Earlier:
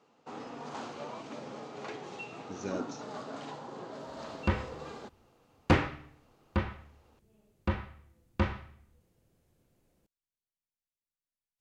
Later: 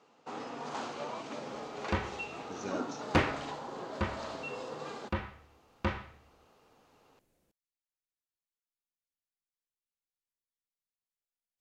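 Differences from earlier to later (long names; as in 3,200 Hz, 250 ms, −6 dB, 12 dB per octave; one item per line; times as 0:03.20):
first sound +3.5 dB
second sound: entry −2.55 s
master: add low-shelf EQ 300 Hz −6 dB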